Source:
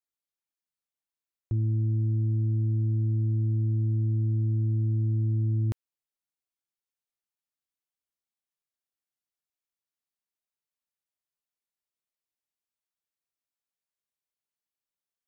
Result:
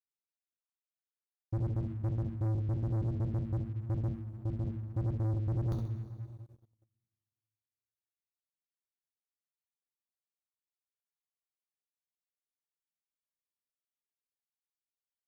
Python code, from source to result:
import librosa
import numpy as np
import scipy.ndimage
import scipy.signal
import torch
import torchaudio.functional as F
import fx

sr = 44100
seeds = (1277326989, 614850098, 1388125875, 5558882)

p1 = fx.spec_dropout(x, sr, seeds[0], share_pct=63)
p2 = p1 + fx.echo_feedback(p1, sr, ms=66, feedback_pct=34, wet_db=-10, dry=0)
p3 = fx.rev_double_slope(p2, sr, seeds[1], early_s=0.33, late_s=2.2, knee_db=-18, drr_db=0.5)
p4 = fx.dynamic_eq(p3, sr, hz=110.0, q=0.82, threshold_db=-42.0, ratio=4.0, max_db=-5, at=(4.1, 4.65))
p5 = fx.leveller(p4, sr, passes=3)
y = F.gain(torch.from_numpy(p5), -8.0).numpy()